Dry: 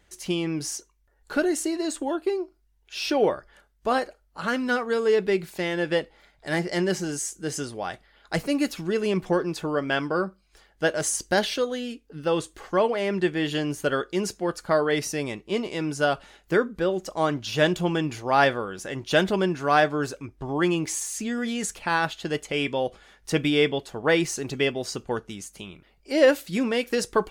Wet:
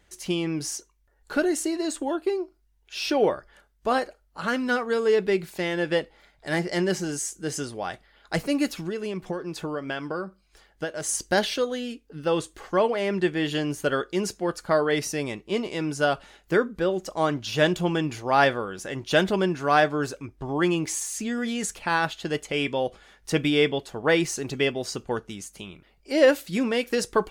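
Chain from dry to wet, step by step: 8.76–11.09 s: compression 10:1, threshold -27 dBFS, peak gain reduction 10.5 dB

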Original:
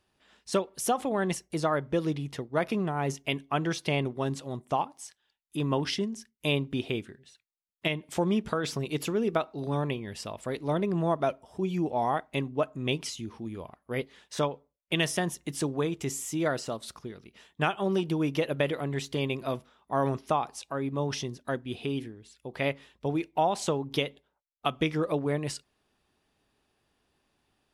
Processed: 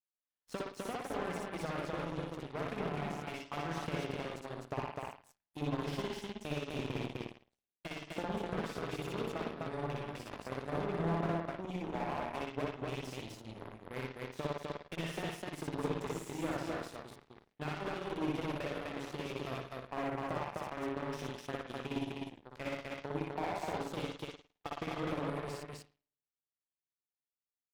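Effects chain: compression 4:1, threshold -32 dBFS, peak gain reduction 10 dB; spring tank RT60 1 s, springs 54 ms, chirp 70 ms, DRR 0 dB; Chebyshev shaper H 2 -17 dB, 3 -43 dB, 6 -42 dB, 7 -17 dB, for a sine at -17.5 dBFS; on a send: loudspeakers at several distances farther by 21 m -2 dB, 87 m -2 dB; on the sum: slew-rate limiter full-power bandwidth 40 Hz; trim -4.5 dB

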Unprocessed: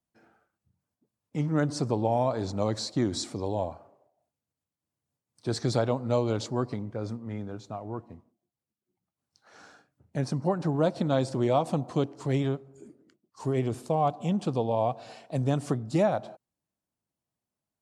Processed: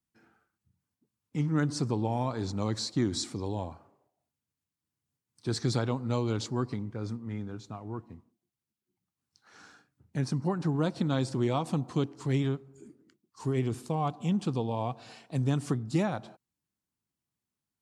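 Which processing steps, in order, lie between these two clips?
peaking EQ 610 Hz -11 dB 0.75 oct

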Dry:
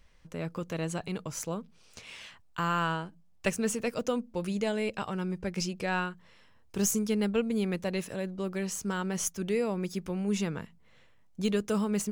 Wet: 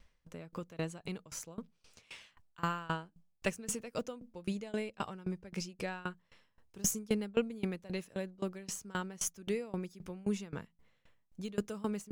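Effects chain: sawtooth tremolo in dB decaying 3.8 Hz, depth 23 dB

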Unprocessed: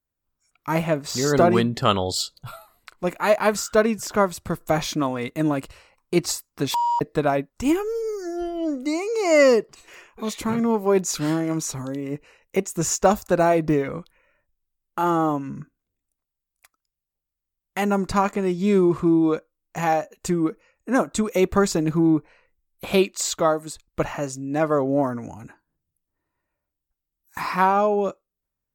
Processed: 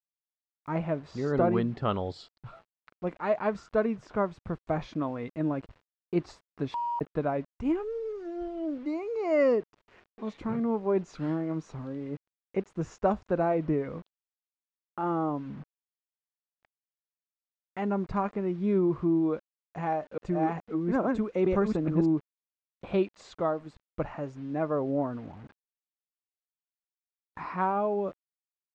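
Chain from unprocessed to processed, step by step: 19.33–22.06 s: chunks repeated in reverse 425 ms, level -1 dB; bit crusher 7-bit; tape spacing loss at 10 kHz 38 dB; trim -6 dB

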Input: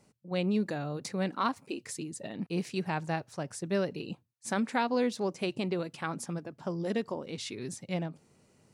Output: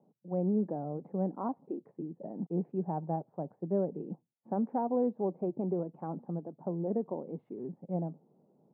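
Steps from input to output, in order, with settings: elliptic band-pass 160–830 Hz, stop band 70 dB

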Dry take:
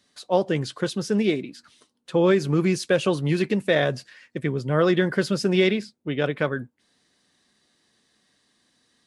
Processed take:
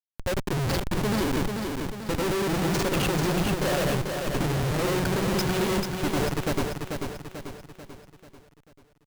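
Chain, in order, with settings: granulator 100 ms; Schmitt trigger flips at -31 dBFS; on a send: feedback delay 440 ms, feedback 49%, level -5 dB

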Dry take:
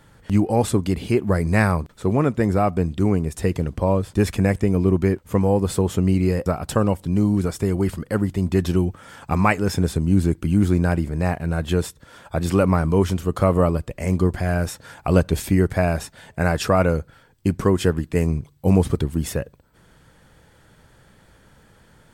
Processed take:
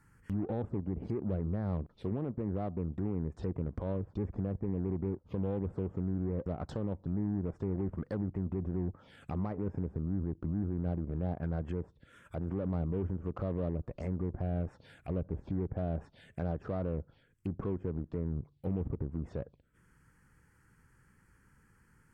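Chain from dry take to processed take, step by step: saturation -6 dBFS, distortion -26 dB; low-pass that closes with the level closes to 600 Hz, closed at -18 dBFS; peak limiter -20 dBFS, peak gain reduction 11 dB; touch-sensitive phaser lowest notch 560 Hz, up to 4.1 kHz, full sweep at -25.5 dBFS; Chebyshev shaper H 3 -22 dB, 7 -33 dB, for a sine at -20 dBFS; trim -6.5 dB

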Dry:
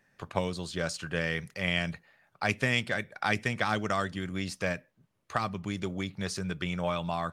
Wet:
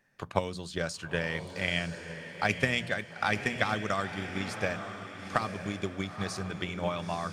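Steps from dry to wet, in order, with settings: hum notches 60/120/180 Hz; echo that smears into a reverb 928 ms, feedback 42%, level -7.5 dB; transient shaper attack +6 dB, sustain +1 dB; trim -3 dB

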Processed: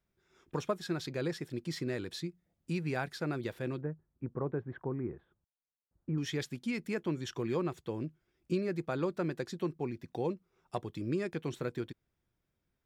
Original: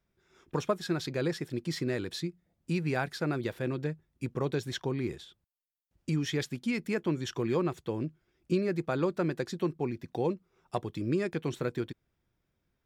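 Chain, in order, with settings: 3.81–6.18 s: low-pass 1.5 kHz 24 dB/octave; trim -4 dB

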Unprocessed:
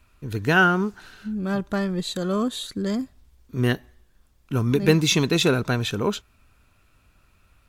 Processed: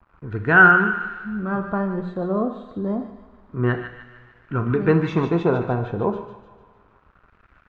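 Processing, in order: two-slope reverb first 0.78 s, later 2.5 s, DRR 6 dB; bit crusher 9-bit; LFO low-pass sine 0.29 Hz 800–1600 Hz; on a send: feedback echo behind a high-pass 150 ms, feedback 49%, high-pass 1.6 kHz, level -6.5 dB; on the sum: trim -1 dB

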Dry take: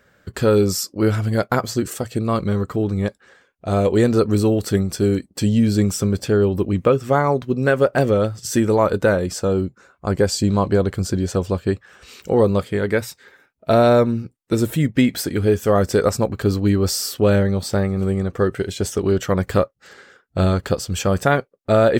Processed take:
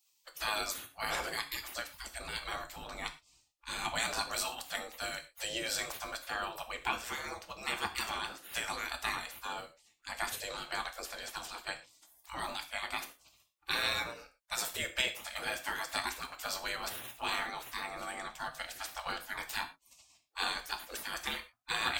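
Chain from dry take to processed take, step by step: spectral gate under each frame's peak -25 dB weak; 1.93–4.00 s: bass shelf 170 Hz +9.5 dB; gated-style reverb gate 140 ms falling, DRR 6 dB

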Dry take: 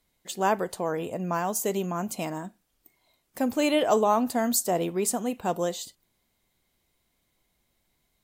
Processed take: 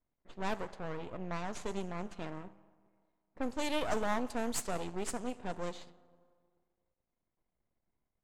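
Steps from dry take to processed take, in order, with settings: elliptic low-pass 12 kHz; Schroeder reverb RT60 1.9 s, combs from 31 ms, DRR 15.5 dB; half-wave rectifier; level-controlled noise filter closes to 1.2 kHz, open at -23 dBFS; trim -5.5 dB

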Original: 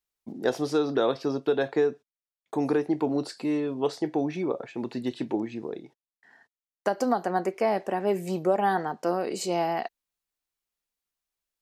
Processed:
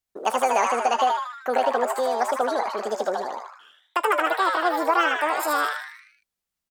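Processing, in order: frequency-shifting echo 133 ms, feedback 51%, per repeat +92 Hz, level -4 dB; speed mistake 45 rpm record played at 78 rpm; trim +2.5 dB

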